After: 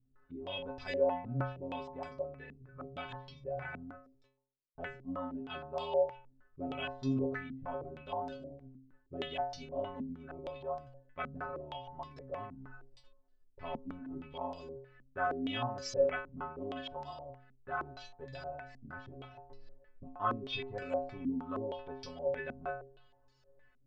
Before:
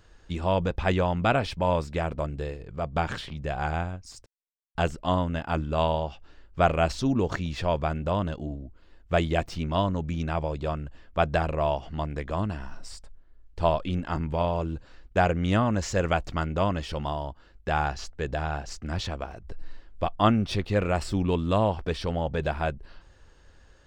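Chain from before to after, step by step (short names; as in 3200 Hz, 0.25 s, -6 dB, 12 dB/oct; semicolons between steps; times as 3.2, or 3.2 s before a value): metallic resonator 130 Hz, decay 0.65 s, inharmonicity 0.008; stepped low-pass 6.4 Hz 230–5100 Hz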